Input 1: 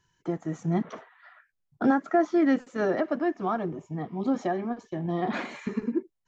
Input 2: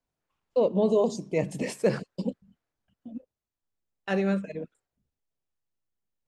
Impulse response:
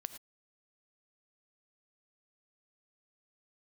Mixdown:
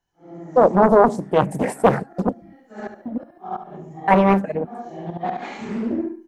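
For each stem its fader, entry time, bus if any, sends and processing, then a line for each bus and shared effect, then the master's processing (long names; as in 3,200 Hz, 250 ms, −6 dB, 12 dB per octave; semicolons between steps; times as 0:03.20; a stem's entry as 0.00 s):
−10.5 dB, 0.00 s, send −12.5 dB, echo send −3.5 dB, random phases in long frames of 200 ms; gate with flip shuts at −19 dBFS, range −25 dB; automatic ducking −19 dB, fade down 0.95 s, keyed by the second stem
−1.0 dB, 0.00 s, send −15.5 dB, no echo send, flat-topped bell 4,200 Hz −14.5 dB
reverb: on, pre-delay 3 ms
echo: repeating echo 71 ms, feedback 34%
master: parametric band 790 Hz +12 dB 0.32 octaves; automatic gain control gain up to 12 dB; highs frequency-modulated by the lows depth 0.79 ms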